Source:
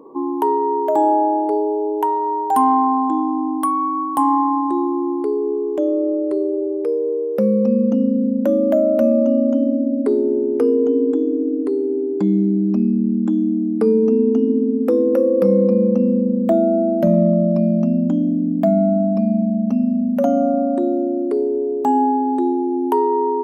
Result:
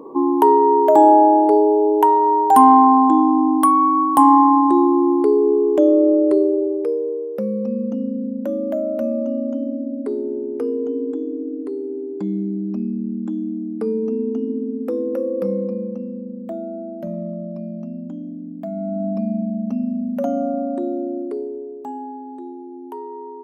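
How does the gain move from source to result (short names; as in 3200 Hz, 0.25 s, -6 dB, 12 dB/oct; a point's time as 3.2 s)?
6.31 s +5 dB
7.46 s -7 dB
15.45 s -7 dB
16.09 s -13.5 dB
18.68 s -13.5 dB
19.08 s -5 dB
21.17 s -5 dB
21.99 s -15.5 dB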